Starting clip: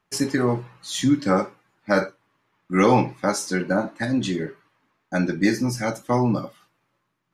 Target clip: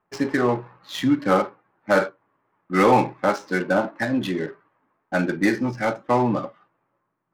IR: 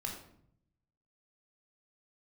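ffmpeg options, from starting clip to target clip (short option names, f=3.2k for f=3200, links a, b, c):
-filter_complex "[0:a]asplit=2[a][b];[b]highpass=f=720:p=1,volume=12dB,asoftclip=type=tanh:threshold=-4.5dB[c];[a][c]amix=inputs=2:normalize=0,lowpass=f=1.6k:p=1,volume=-6dB,adynamicsmooth=sensitivity=5:basefreq=1.4k"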